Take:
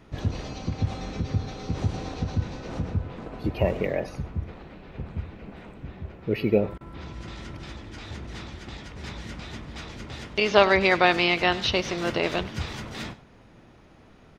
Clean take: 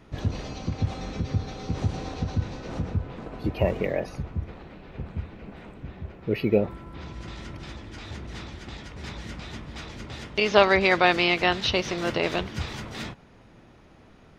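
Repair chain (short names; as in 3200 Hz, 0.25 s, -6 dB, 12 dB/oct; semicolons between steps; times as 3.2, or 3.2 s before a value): interpolate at 6.78, 27 ms; inverse comb 98 ms -18 dB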